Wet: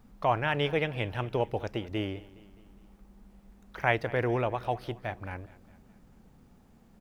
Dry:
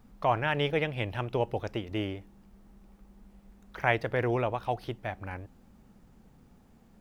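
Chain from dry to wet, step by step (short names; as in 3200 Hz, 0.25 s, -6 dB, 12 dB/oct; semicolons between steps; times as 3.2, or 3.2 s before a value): feedback echo 0.208 s, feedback 52%, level -20 dB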